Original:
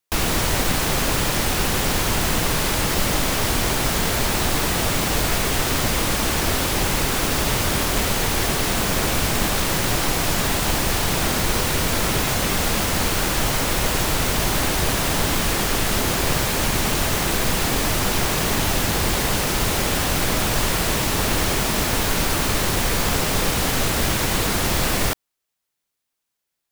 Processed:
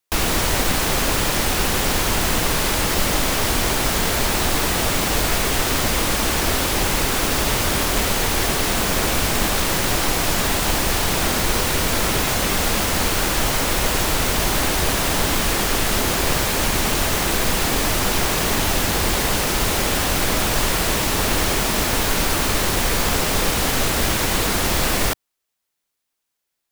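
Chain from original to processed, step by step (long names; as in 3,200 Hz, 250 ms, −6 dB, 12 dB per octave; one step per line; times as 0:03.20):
parametric band 130 Hz −4 dB 1.1 octaves
level +1.5 dB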